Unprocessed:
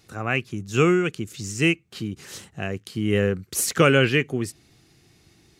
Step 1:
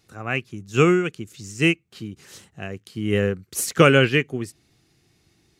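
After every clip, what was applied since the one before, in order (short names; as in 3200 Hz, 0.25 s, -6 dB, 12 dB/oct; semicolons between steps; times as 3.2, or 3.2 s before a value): upward expander 1.5:1, over -31 dBFS; gain +3.5 dB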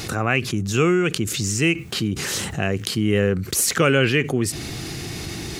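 fast leveller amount 70%; gain -5 dB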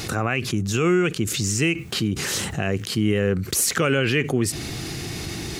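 limiter -10.5 dBFS, peak gain reduction 9 dB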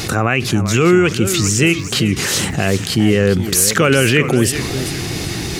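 warbling echo 0.398 s, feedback 38%, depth 204 cents, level -11 dB; gain +7.5 dB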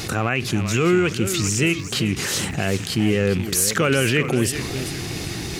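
rattling part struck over -18 dBFS, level -17 dBFS; gain -6 dB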